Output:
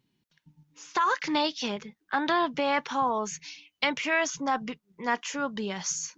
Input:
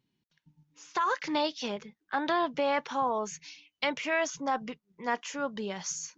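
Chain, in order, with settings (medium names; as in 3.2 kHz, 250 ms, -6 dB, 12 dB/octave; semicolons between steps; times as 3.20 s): dynamic bell 560 Hz, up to -5 dB, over -42 dBFS, Q 1.4; trim +4.5 dB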